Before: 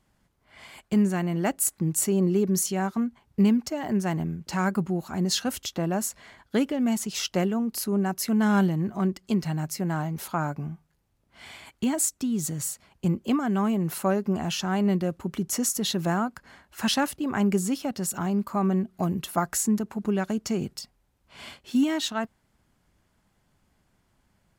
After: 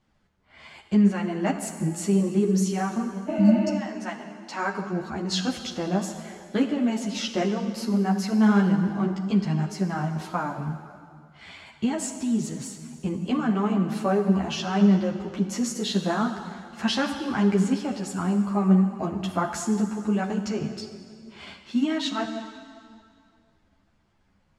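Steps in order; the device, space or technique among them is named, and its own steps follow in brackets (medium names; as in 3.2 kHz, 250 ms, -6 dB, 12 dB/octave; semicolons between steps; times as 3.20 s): 3.30–3.70 s: spectral replace 270–4300 Hz after; 3.76–4.91 s: high-pass 1.1 kHz -> 280 Hz 12 dB/octave; plate-style reverb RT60 2.2 s, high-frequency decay 0.9×, DRR 6 dB; string-machine ensemble chorus (three-phase chorus; low-pass 5.3 kHz 12 dB/octave); trim +3 dB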